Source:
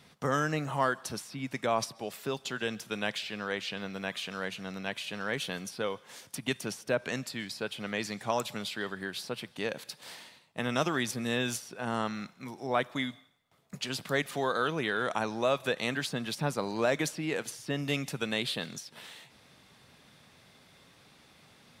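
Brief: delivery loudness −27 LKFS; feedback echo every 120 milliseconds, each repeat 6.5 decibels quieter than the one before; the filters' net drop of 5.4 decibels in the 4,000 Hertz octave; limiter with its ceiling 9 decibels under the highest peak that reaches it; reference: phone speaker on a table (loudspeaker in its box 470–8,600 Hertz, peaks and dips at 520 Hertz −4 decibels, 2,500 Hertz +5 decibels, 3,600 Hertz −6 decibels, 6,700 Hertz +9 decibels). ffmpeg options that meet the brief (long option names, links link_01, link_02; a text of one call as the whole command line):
ffmpeg -i in.wav -af "equalizer=frequency=4000:width_type=o:gain=-5,alimiter=limit=-22dB:level=0:latency=1,highpass=frequency=470:width=0.5412,highpass=frequency=470:width=1.3066,equalizer=frequency=520:width_type=q:width=4:gain=-4,equalizer=frequency=2500:width_type=q:width=4:gain=5,equalizer=frequency=3600:width_type=q:width=4:gain=-6,equalizer=frequency=6700:width_type=q:width=4:gain=9,lowpass=frequency=8600:width=0.5412,lowpass=frequency=8600:width=1.3066,aecho=1:1:120|240|360|480|600|720:0.473|0.222|0.105|0.0491|0.0231|0.0109,volume=10dB" out.wav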